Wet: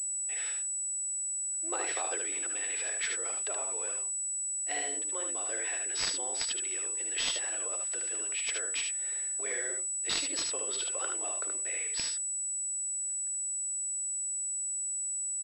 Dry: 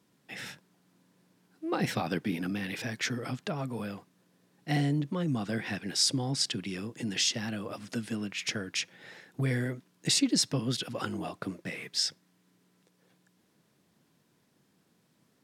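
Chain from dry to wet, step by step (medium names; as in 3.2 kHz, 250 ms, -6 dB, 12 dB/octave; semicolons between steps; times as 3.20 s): steep high-pass 370 Hz 48 dB/octave; treble shelf 3 kHz +10.5 dB; early reflections 57 ms -15.5 dB, 75 ms -4.5 dB; class-D stage that switches slowly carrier 7.9 kHz; trim -5.5 dB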